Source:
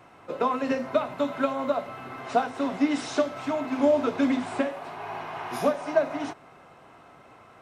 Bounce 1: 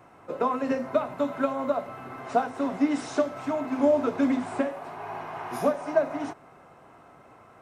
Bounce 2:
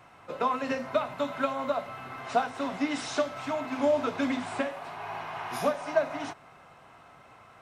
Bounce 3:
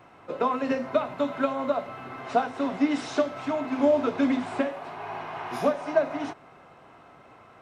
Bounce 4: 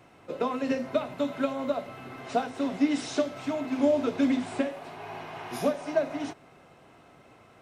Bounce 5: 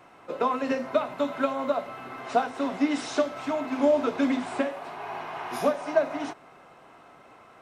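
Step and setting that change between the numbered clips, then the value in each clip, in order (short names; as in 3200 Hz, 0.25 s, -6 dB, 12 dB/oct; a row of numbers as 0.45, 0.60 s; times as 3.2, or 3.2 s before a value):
bell, frequency: 3500, 340, 13000, 1100, 93 Hz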